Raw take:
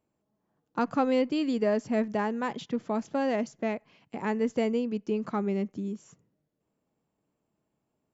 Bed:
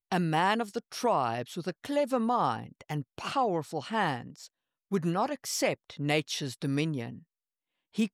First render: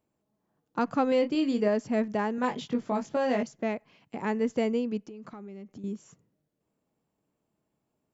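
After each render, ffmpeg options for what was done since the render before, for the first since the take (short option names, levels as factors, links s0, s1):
-filter_complex "[0:a]asettb=1/sr,asplit=3[s0][s1][s2];[s0]atrim=end=1.094[s3];[s1]atrim=start=1.09:end=1.68,asetpts=PTS-STARTPTS,afade=t=in:d=0.004:c=qsin,afade=t=out:st=0.586:d=0.004:c=qsin,asplit=2[s4][s5];[s5]adelay=29,volume=0.398[s6];[s4][s6]amix=inputs=2:normalize=0,atrim=end_sample=26019[s7];[s2]atrim=start=1.676[s8];[s3][s7]acrossfade=d=0.004:c1=hsin:c2=qsin[s9];[s9][s8]acrossfade=d=0.004:c1=qsin:c2=hsin,asettb=1/sr,asplit=3[s10][s11][s12];[s10]atrim=end=2.364[s13];[s11]atrim=start=2.36:end=3.43,asetpts=PTS-STARTPTS,afade=t=in:d=0.004:c=qsin,afade=t=out:st=1.066:d=0.004:c=qsin,asplit=2[s14][s15];[s15]adelay=20,volume=0.708[s16];[s14][s16]amix=inputs=2:normalize=0,atrim=end_sample=47187[s17];[s12]atrim=start=3.426[s18];[s13][s17]acrossfade=d=0.004:c1=hsin:c2=qsin[s19];[s19][s18]acrossfade=d=0.004:c1=qsin:c2=hsin,asettb=1/sr,asplit=3[s20][s21][s22];[s20]atrim=end=5.034[s23];[s21]atrim=start=5.03:end=5.84,asetpts=PTS-STARTPTS,afade=t=in:d=0.004:c=qsin,afade=t=out:st=0.806:d=0.004:c=qsin,acompressor=threshold=0.01:ratio=12:attack=3.2:release=140:knee=1:detection=peak[s24];[s22]atrim=start=5.836[s25];[s23][s24]acrossfade=d=0.004:c1=hsin:c2=qsin[s26];[s26][s25]acrossfade=d=0.004:c1=qsin:c2=hsin"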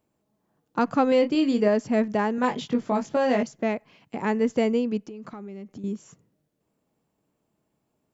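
-af "volume=1.68"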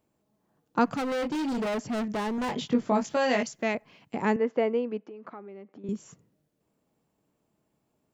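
-filter_complex "[0:a]asettb=1/sr,asplit=3[s0][s1][s2];[s0]atrim=end=0.854[s3];[s1]atrim=start=0.85:end=2.53,asetpts=PTS-STARTPTS,afade=t=in:d=0.004:c=qsin,afade=t=out:st=1.676:d=0.004:c=qsin,asoftclip=type=hard:threshold=0.0422[s4];[s2]atrim=start=2.526[s5];[s3][s4]acrossfade=d=0.004:c1=hsin:c2=qsin[s6];[s6][s5]acrossfade=d=0.004:c1=qsin:c2=hsin,asettb=1/sr,asplit=3[s7][s8][s9];[s7]atrim=end=3.044[s10];[s8]atrim=start=3.04:end=3.75,asetpts=PTS-STARTPTS,afade=t=in:d=0.004:c=qsin,afade=t=out:st=0.706:d=0.004:c=qsin,tiltshelf=f=1100:g=-5.5[s11];[s9]atrim=start=3.746[s12];[s10][s11]acrossfade=d=0.004:c1=hsin:c2=qsin[s13];[s13][s12]acrossfade=d=0.004:c1=qsin:c2=hsin,asettb=1/sr,asplit=3[s14][s15][s16];[s14]atrim=end=4.364[s17];[s15]atrim=start=4.36:end=5.89,asetpts=PTS-STARTPTS,afade=t=in:d=0.004:c=qsin,afade=t=out:st=1.526:d=0.004:c=qsin,highpass=360,lowpass=2100[s18];[s16]atrim=start=5.886[s19];[s17][s18]acrossfade=d=0.004:c1=hsin:c2=qsin[s20];[s20][s19]acrossfade=d=0.004:c1=qsin:c2=hsin"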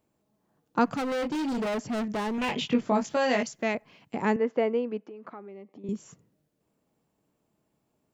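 -filter_complex "[0:a]asettb=1/sr,asplit=3[s0][s1][s2];[s0]atrim=end=2.344[s3];[s1]atrim=start=2.34:end=2.81,asetpts=PTS-STARTPTS,afade=t=in:d=0.004:c=qsin,afade=t=out:st=0.466:d=0.004:c=qsin,equalizer=f=2600:w=2.4:g=12[s4];[s2]atrim=start=2.806[s5];[s3][s4]acrossfade=d=0.004:c1=hsin:c2=qsin[s6];[s6][s5]acrossfade=d=0.004:c1=qsin:c2=hsin,asettb=1/sr,asplit=3[s7][s8][s9];[s7]atrim=end=5.514[s10];[s8]atrim=start=5.51:end=5.94,asetpts=PTS-STARTPTS,afade=t=in:d=0.004:c=qsin,afade=t=out:st=0.426:d=0.004:c=qsin,asuperstop=centerf=1500:order=4:qfactor=2.5[s11];[s9]atrim=start=5.936[s12];[s10][s11]acrossfade=d=0.004:c1=hsin:c2=qsin[s13];[s13][s12]acrossfade=d=0.004:c1=qsin:c2=hsin"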